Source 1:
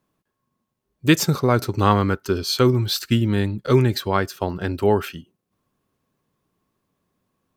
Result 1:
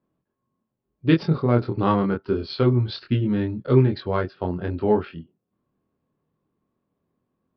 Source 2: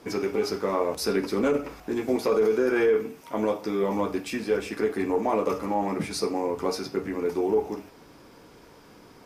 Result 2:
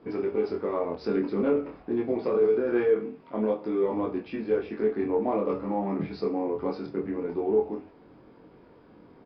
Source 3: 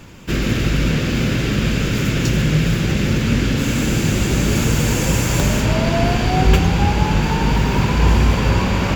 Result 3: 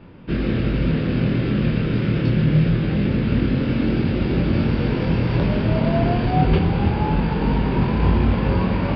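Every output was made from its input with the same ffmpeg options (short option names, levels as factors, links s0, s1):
-af "lowshelf=f=110:g=-8,flanger=delay=22.5:depth=3.1:speed=0.24,adynamicsmooth=sensitivity=2:basefreq=3600,tiltshelf=f=700:g=5,aresample=11025,aresample=44100"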